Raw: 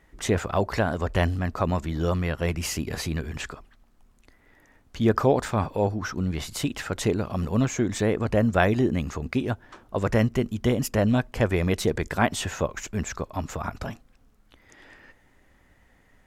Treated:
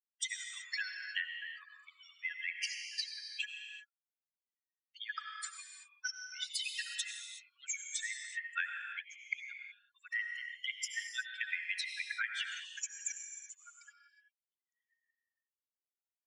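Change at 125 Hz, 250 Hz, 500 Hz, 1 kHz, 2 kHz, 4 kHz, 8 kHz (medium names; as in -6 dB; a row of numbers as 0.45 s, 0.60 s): under -40 dB, under -40 dB, under -40 dB, -22.5 dB, -4.5 dB, -3.0 dB, -5.0 dB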